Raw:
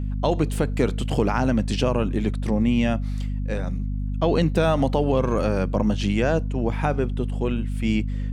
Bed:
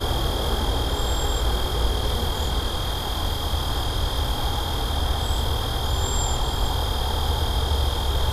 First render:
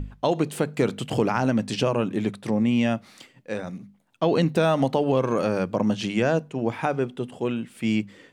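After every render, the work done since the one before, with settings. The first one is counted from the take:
mains-hum notches 50/100/150/200/250 Hz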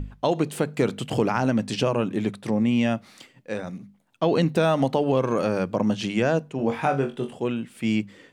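0:06.57–0:07.34: flutter between parallel walls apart 3.7 metres, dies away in 0.24 s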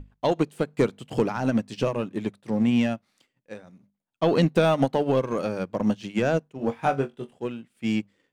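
leveller curve on the samples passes 1
expander for the loud parts 2.5 to 1, over −28 dBFS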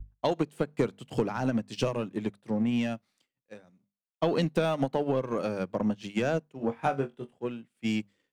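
downward compressor 6 to 1, threshold −24 dBFS, peak gain reduction 9 dB
multiband upward and downward expander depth 70%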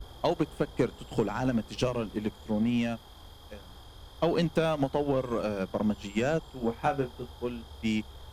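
mix in bed −24.5 dB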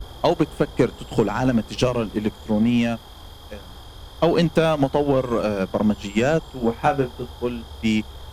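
level +8.5 dB

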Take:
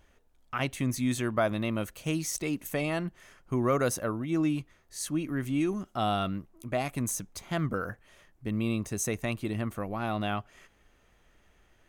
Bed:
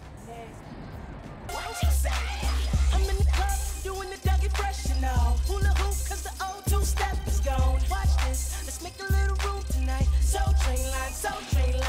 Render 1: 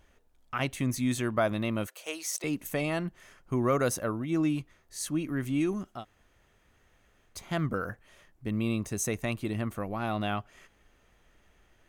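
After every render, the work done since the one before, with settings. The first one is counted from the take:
0:01.87–0:02.44: high-pass filter 440 Hz 24 dB per octave
0:05.97–0:07.32: fill with room tone, crossfade 0.16 s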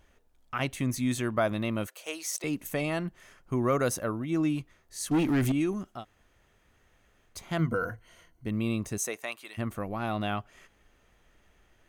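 0:05.11–0:05.52: leveller curve on the samples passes 3
0:07.58–0:08.46: EQ curve with evenly spaced ripples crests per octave 1.9, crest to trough 11 dB
0:08.97–0:09.57: high-pass filter 320 Hz → 1,300 Hz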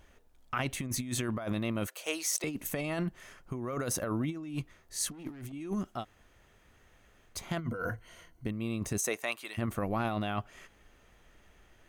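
brickwall limiter −21.5 dBFS, peak gain reduction 7.5 dB
compressor whose output falls as the input rises −33 dBFS, ratio −0.5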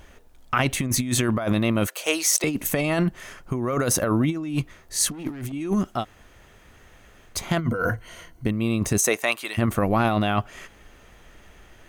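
level +11 dB

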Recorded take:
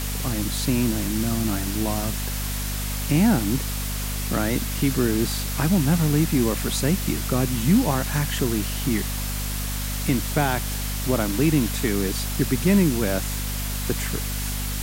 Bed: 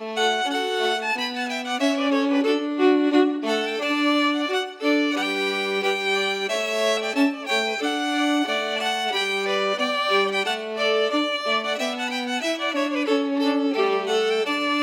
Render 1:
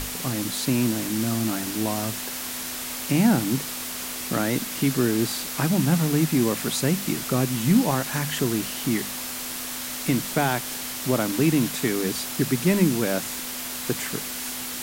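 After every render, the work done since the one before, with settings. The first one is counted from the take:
mains-hum notches 50/100/150/200 Hz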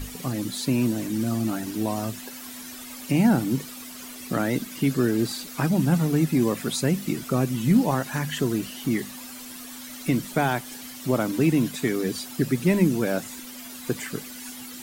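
broadband denoise 12 dB, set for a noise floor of −33 dBFS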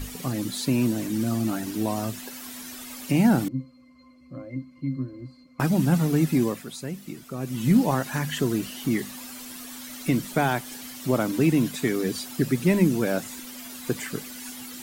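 0:03.48–0:05.60: resonances in every octave C, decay 0.19 s
0:06.37–0:07.67: duck −10.5 dB, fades 0.29 s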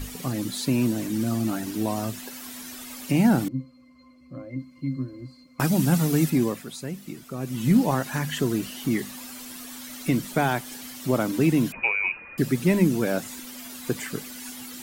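0:04.59–0:06.30: high-shelf EQ 3,700 Hz +7.5 dB
0:11.72–0:12.38: voice inversion scrambler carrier 2,700 Hz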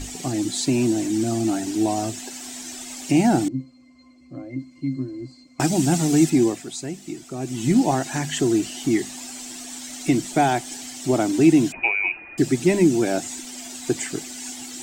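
drawn EQ curve 140 Hz 0 dB, 210 Hz −3 dB, 340 Hz +10 dB, 510 Hz −5 dB, 720 Hz +9 dB, 1,100 Hz −4 dB, 2,000 Hz +2 dB, 4,400 Hz +4 dB, 7,900 Hz +11 dB, 11,000 Hz −8 dB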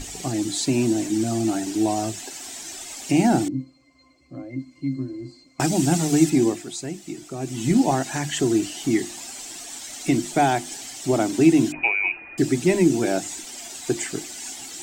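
mains-hum notches 50/100/150/200/250/300/350 Hz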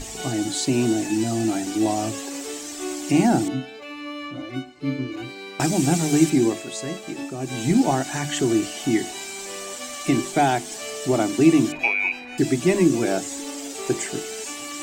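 mix in bed −13.5 dB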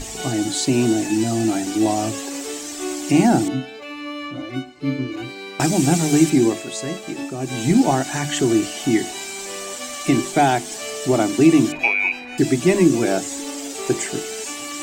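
level +3 dB
brickwall limiter −3 dBFS, peak gain reduction 1.5 dB

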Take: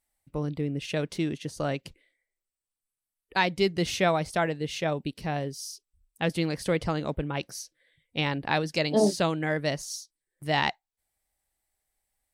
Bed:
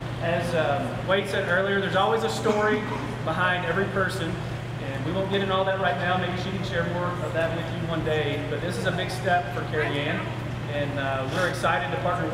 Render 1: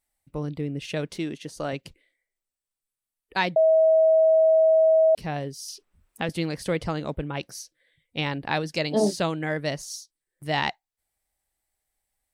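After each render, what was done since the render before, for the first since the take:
0:01.16–0:01.73: parametric band 94 Hz −9.5 dB 1.4 octaves
0:03.56–0:05.15: beep over 641 Hz −14.5 dBFS
0:05.68–0:06.29: multiband upward and downward compressor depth 70%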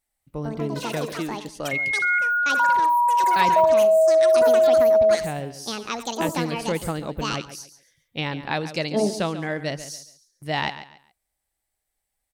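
repeating echo 139 ms, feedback 27%, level −13 dB
delay with pitch and tempo change per echo 218 ms, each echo +7 semitones, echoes 3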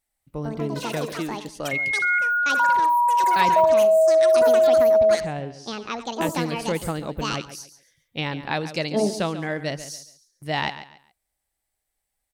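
0:05.20–0:06.21: high-frequency loss of the air 120 metres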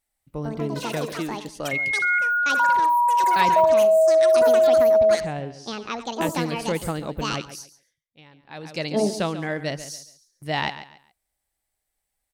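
0:07.58–0:08.91: duck −22.5 dB, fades 0.43 s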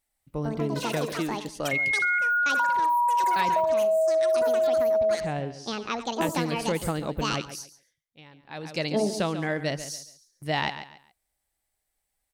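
downward compressor, threshold −21 dBFS, peak gain reduction 8 dB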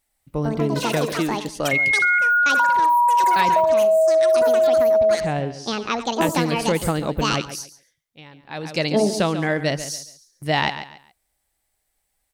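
level +6.5 dB

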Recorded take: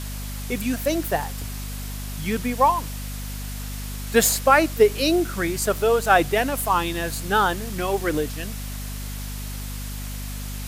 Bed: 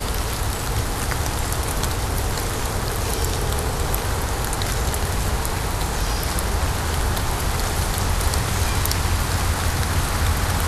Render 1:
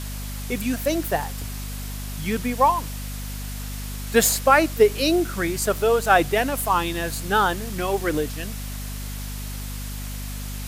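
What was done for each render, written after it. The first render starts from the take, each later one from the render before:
no processing that can be heard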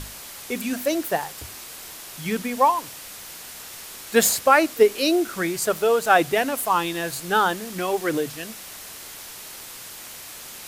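mains-hum notches 50/100/150/200/250 Hz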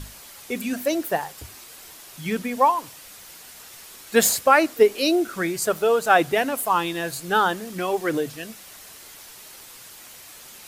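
broadband denoise 6 dB, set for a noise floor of −40 dBFS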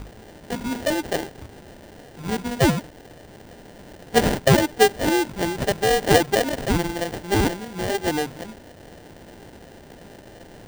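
sample-rate reduction 1,200 Hz, jitter 0%
windowed peak hold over 3 samples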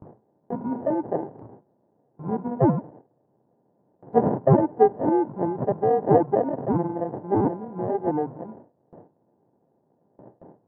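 elliptic band-pass filter 120–1,000 Hz, stop band 70 dB
noise gate with hold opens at −33 dBFS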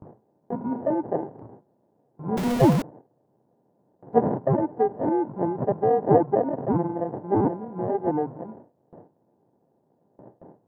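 0:02.37–0:02.82: converter with a step at zero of −22.5 dBFS
0:04.19–0:05.33: downward compressor 2 to 1, threshold −20 dBFS
0:06.07–0:06.52: high-frequency loss of the air 100 metres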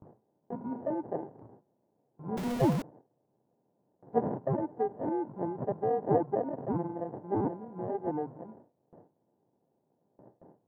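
level −8.5 dB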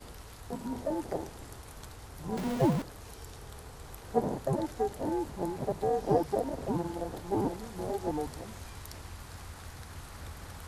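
mix in bed −24 dB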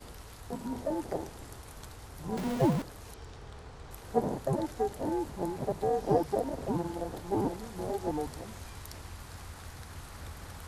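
0:03.14–0:03.91: high-frequency loss of the air 86 metres

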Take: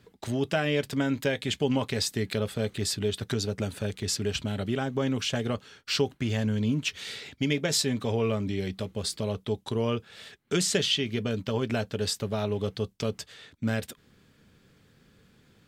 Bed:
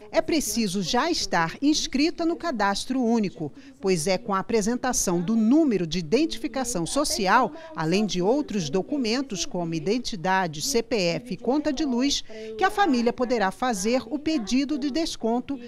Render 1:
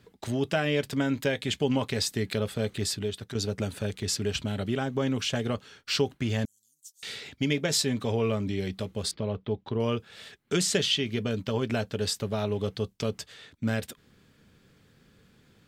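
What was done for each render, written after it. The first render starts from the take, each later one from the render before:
0:02.83–0:03.35: fade out, to −9.5 dB
0:06.45–0:07.03: inverse Chebyshev high-pass filter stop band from 2,500 Hz, stop band 60 dB
0:09.11–0:09.80: high-frequency loss of the air 290 metres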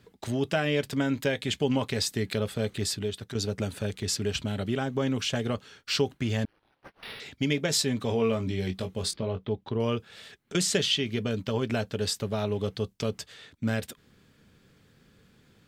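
0:06.44–0:07.20: linearly interpolated sample-rate reduction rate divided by 6×
0:08.07–0:09.49: double-tracking delay 22 ms −7 dB
0:10.09–0:10.55: downward compressor, threshold −42 dBFS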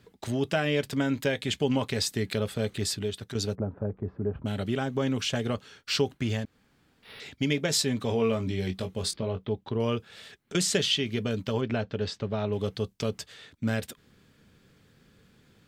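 0:03.55–0:04.46: low-pass filter 1,100 Hz 24 dB per octave
0:06.44–0:07.12: fill with room tone, crossfade 0.24 s
0:11.61–0:12.53: high-frequency loss of the air 170 metres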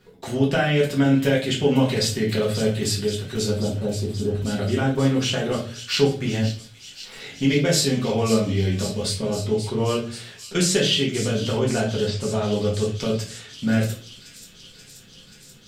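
delay with a high-pass on its return 532 ms, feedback 78%, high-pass 3,800 Hz, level −9 dB
rectangular room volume 31 cubic metres, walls mixed, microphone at 0.95 metres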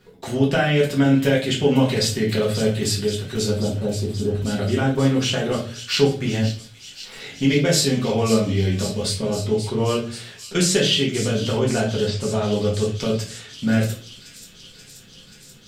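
level +1.5 dB

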